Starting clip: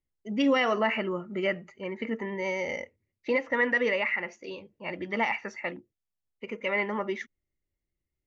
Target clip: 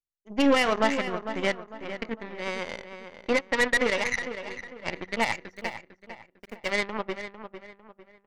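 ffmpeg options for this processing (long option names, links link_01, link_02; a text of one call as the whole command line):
ffmpeg -i in.wav -filter_complex "[0:a]aeval=exprs='0.188*(cos(1*acos(clip(val(0)/0.188,-1,1)))-cos(1*PI/2))+0.0531*(cos(2*acos(clip(val(0)/0.188,-1,1)))-cos(2*PI/2))+0.0237*(cos(7*acos(clip(val(0)/0.188,-1,1)))-cos(7*PI/2))':channel_layout=same,asplit=3[link_01][link_02][link_03];[link_01]afade=type=out:start_time=4.36:duration=0.02[link_04];[link_02]acontrast=73,afade=type=in:start_time=4.36:duration=0.02,afade=type=out:start_time=5.02:duration=0.02[link_05];[link_03]afade=type=in:start_time=5.02:duration=0.02[link_06];[link_04][link_05][link_06]amix=inputs=3:normalize=0,asettb=1/sr,asplit=3[link_07][link_08][link_09];[link_07]atrim=end=5.554[link_10];[link_08]atrim=start=5.55:end=6.7,asetpts=PTS-STARTPTS,afade=type=in:duration=0.004:curve=qsin,afade=type=out:start_time=1.146:duration=0.004:curve=qsin,aeval=exprs='val(0)*gte(abs(val(0)),0.00316)':channel_layout=same[link_11];[link_09]atrim=start=6.696[link_12];[link_10][link_11]acrossfade=duration=0.004:curve1=hsin:curve2=qsin[link_13];[link_13][link_12]acrossfade=duration=0.004:curve1=qsin:curve2=hsin,asplit=2[link_14][link_15];[link_15]adelay=451,lowpass=frequency=3100:poles=1,volume=-10dB,asplit=2[link_16][link_17];[link_17]adelay=451,lowpass=frequency=3100:poles=1,volume=0.37,asplit=2[link_18][link_19];[link_19]adelay=451,lowpass=frequency=3100:poles=1,volume=0.37,asplit=2[link_20][link_21];[link_21]adelay=451,lowpass=frequency=3100:poles=1,volume=0.37[link_22];[link_16][link_18][link_20][link_22]amix=inputs=4:normalize=0[link_23];[link_14][link_23]amix=inputs=2:normalize=0,volume=1.5dB" out.wav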